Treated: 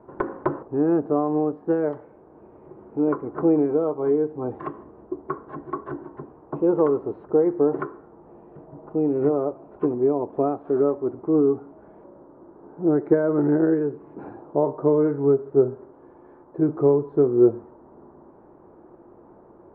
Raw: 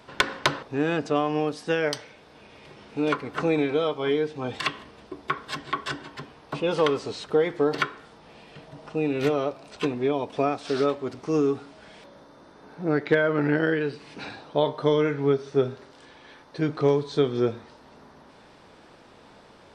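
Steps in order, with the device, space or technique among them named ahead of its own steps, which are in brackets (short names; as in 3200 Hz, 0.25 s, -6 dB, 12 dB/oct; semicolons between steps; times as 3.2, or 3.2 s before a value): under water (LPF 1100 Hz 24 dB/oct; bell 350 Hz +11.5 dB 0.36 oct)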